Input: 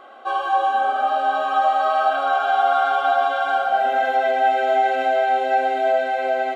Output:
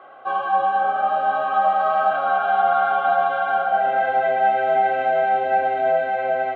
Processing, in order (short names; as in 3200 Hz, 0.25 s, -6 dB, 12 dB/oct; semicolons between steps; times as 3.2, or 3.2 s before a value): octaver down 2 oct, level 0 dB; three-band isolator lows -21 dB, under 280 Hz, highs -20 dB, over 2800 Hz